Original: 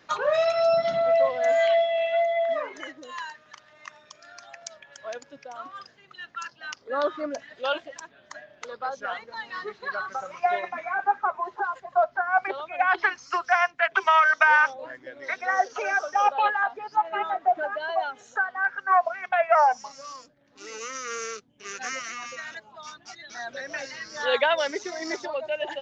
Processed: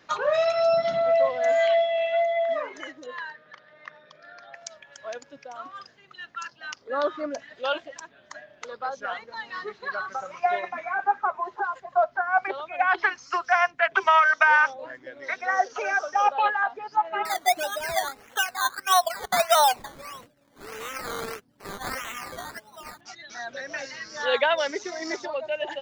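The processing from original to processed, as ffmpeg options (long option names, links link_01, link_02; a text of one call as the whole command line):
ffmpeg -i in.wav -filter_complex "[0:a]asettb=1/sr,asplit=3[link_01][link_02][link_03];[link_01]atrim=end=3.064[link_04];[link_02]atrim=start=3.06:end=4.55,asetpts=PTS-STARTPTS,afade=type=in:duration=0.004:curve=qsin,afade=type=out:start_time=1.486:duration=0.004:curve=qsin,highpass=140,equalizer=frequency=160:width_type=q:width=4:gain=9,equalizer=frequency=500:width_type=q:width=4:gain=10,equalizer=frequency=1000:width_type=q:width=4:gain=-4,equalizer=frequency=1700:width_type=q:width=4:gain=4,equalizer=frequency=2700:width_type=q:width=4:gain=-7,lowpass=frequency=4000:width=0.5412,lowpass=frequency=4000:width=1.3066[link_05];[link_03]atrim=start=4.546[link_06];[link_04][link_05]acrossfade=duration=0.004:curve1=hsin:curve2=qsin[link_07];[link_07][link_06]acrossfade=duration=0.004:curve1=qsin:curve2=hsin,asettb=1/sr,asplit=3[link_08][link_09][link_10];[link_08]atrim=end=13.544[link_11];[link_09]atrim=start=13.54:end=14.19,asetpts=PTS-STARTPTS,afade=type=in:duration=0.004:curve=qsin,afade=type=out:start_time=0.646:duration=0.004:curve=qsin,lowshelf=frequency=430:gain=6[link_12];[link_10]atrim=start=14.186[link_13];[link_11][link_12]acrossfade=duration=0.004:curve1=hsin:curve2=qsin[link_14];[link_14][link_13]acrossfade=duration=0.004:curve1=qsin:curve2=hsin,asettb=1/sr,asplit=3[link_15][link_16][link_17];[link_15]atrim=end=17.254[link_18];[link_16]atrim=start=17.25:end=23.01,asetpts=PTS-STARTPTS,afade=type=in:duration=0.004:curve=qsin,afade=type=out:start_time=5.756:duration=0.004:curve=qsin,acrusher=samples=13:mix=1:aa=0.000001:lfo=1:lforange=7.8:lforate=1.6[link_19];[link_17]atrim=start=23.006[link_20];[link_18][link_19]acrossfade=duration=0.004:curve1=hsin:curve2=qsin[link_21];[link_21][link_20]acrossfade=duration=0.004:curve1=qsin:curve2=hsin" out.wav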